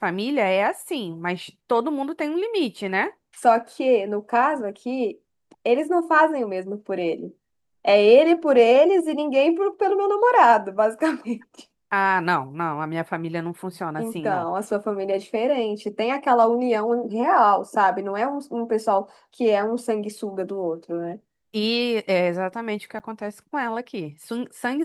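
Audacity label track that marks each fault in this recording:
22.990000	23.000000	drop-out 8.9 ms

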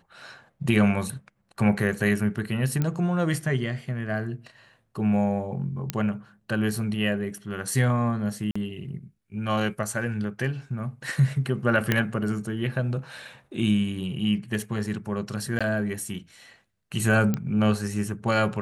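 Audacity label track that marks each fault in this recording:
2.820000	2.820000	click −13 dBFS
5.900000	5.900000	click −9 dBFS
8.510000	8.550000	drop-out 45 ms
11.920000	11.920000	click −8 dBFS
15.590000	15.610000	drop-out 16 ms
17.340000	17.340000	click −13 dBFS

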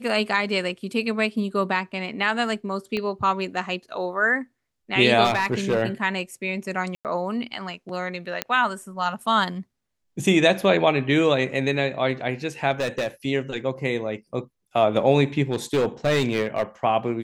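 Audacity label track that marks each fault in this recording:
2.970000	2.970000	click −16 dBFS
5.240000	5.820000	clipping −16 dBFS
6.950000	7.050000	drop-out 98 ms
8.420000	8.420000	click −7 dBFS
12.710000	13.080000	clipping −20.5 dBFS
15.510000	16.630000	clipping −16.5 dBFS

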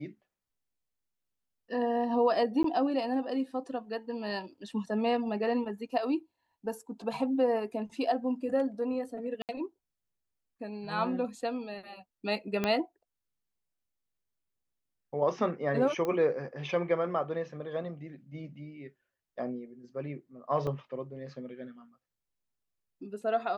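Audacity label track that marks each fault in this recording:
2.630000	2.640000	drop-out 13 ms
9.420000	9.490000	drop-out 68 ms
12.640000	12.640000	click −15 dBFS
16.050000	16.050000	click −21 dBFS
20.670000	20.670000	drop-out 3.8 ms

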